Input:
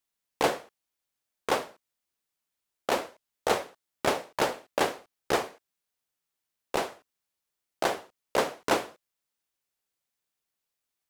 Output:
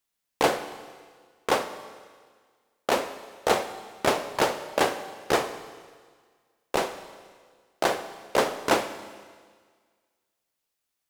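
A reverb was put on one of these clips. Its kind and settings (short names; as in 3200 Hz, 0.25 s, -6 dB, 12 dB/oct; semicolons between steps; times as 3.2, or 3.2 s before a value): Schroeder reverb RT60 1.7 s, combs from 30 ms, DRR 10.5 dB; gain +3 dB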